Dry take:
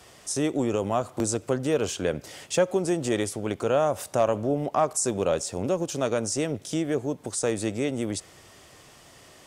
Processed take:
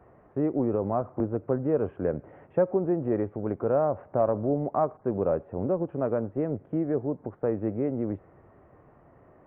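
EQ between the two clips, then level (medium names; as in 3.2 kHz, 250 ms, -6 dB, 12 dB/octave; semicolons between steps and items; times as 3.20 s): Gaussian low-pass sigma 6.6 samples; 0.0 dB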